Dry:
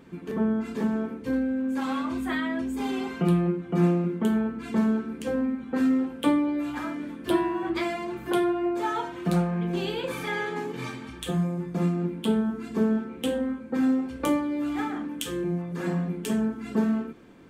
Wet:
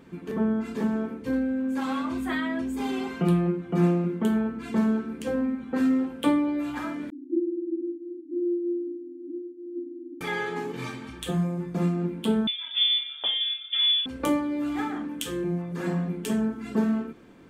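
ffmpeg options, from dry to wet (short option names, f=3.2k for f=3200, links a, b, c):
-filter_complex "[0:a]asettb=1/sr,asplit=3[a][b][c];[a]atrim=end=7.104[d];[b]atrim=start=7.1:end=10.21,asetpts=PTS-STARTPTS,afade=t=in:d=0.004:c=qsin,afade=t=out:st=3.106:d=0.004:c=qsin,asuperpass=centerf=300:order=20:qfactor=3.1[e];[c]atrim=start=10.206[f];[d][e]acrossfade=d=0.004:c1=hsin:c2=qsin[g];[g][f]acrossfade=d=0.004:c1=qsin:c2=hsin,asettb=1/sr,asplit=3[h][i][j];[h]atrim=end=12.474[k];[i]atrim=start=12.47:end=14.06,asetpts=PTS-STARTPTS,afade=t=in:d=0.004:c=qsin,afade=t=out:st=1.586:d=0.004:c=qsin,lowpass=f=3.1k:t=q:w=0.5098,lowpass=f=3.1k:t=q:w=0.6013,lowpass=f=3.1k:t=q:w=0.9,lowpass=f=3.1k:t=q:w=2.563,afreqshift=-3700[l];[j]atrim=start=14.056[m];[k][l]acrossfade=d=0.004:c1=hsin:c2=qsin[n];[n][m]acrossfade=d=0.004:c1=qsin:c2=hsin"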